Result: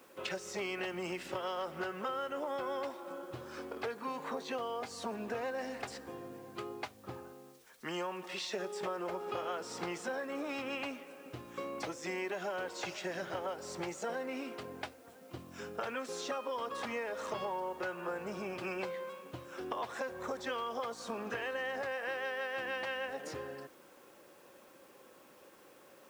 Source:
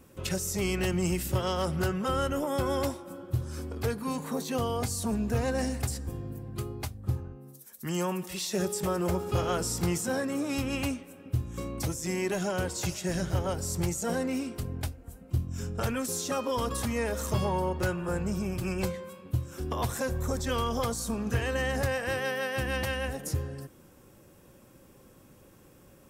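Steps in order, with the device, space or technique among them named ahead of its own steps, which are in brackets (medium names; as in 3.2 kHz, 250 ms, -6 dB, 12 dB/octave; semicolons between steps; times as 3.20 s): baby monitor (band-pass 470–3100 Hz; compression, threshold -38 dBFS, peak gain reduction 10.5 dB; white noise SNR 27 dB); trim +3 dB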